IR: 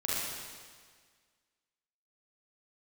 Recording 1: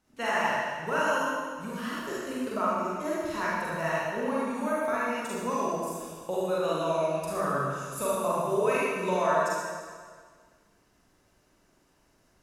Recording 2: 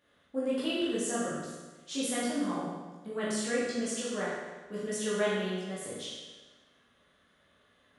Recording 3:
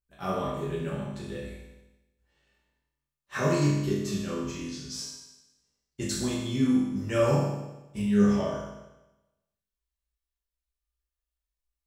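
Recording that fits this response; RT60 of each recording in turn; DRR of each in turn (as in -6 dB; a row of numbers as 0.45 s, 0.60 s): 1; 1.7 s, 1.3 s, 1.0 s; -8.0 dB, -8.5 dB, -8.5 dB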